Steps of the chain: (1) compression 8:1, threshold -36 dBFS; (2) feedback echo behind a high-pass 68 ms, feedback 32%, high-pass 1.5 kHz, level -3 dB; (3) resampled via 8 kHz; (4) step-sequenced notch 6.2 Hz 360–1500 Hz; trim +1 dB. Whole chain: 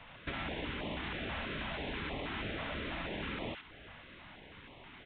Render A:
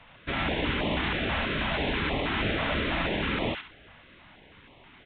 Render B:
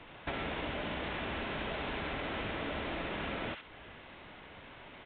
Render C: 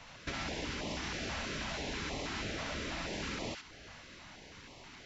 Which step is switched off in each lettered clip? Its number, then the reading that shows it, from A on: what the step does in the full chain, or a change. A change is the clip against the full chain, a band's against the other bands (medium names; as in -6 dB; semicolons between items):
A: 1, momentary loudness spread change -10 LU; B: 4, 1 kHz band +2.5 dB; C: 3, 4 kHz band +2.5 dB